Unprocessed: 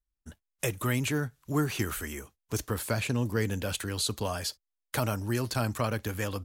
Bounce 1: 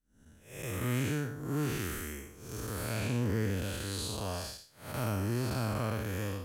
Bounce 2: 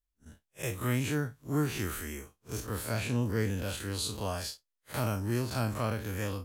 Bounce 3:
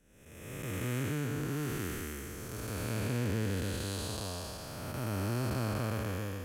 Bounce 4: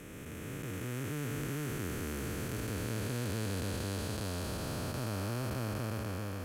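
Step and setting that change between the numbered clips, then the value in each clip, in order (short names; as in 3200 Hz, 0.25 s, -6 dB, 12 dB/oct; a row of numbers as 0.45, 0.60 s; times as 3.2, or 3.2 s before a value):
time blur, width: 229, 85, 570, 1650 ms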